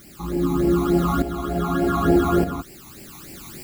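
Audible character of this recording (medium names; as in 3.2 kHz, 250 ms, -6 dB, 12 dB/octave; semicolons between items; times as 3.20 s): a quantiser's noise floor 8-bit, dither triangular; tremolo saw up 0.82 Hz, depth 65%; phasing stages 12, 3.4 Hz, lowest notch 510–1200 Hz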